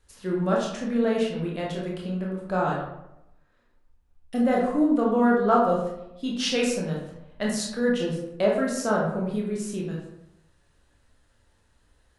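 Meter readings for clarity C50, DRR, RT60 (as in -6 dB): 2.5 dB, -3.5 dB, 0.85 s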